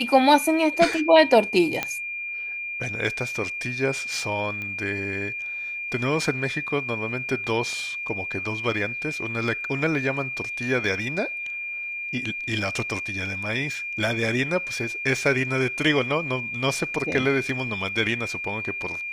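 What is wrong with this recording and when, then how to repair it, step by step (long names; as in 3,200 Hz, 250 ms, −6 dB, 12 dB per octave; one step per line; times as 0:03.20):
whistle 2,400 Hz −29 dBFS
0:01.83: click −9 dBFS
0:04.62: click −21 dBFS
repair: click removal
notch filter 2,400 Hz, Q 30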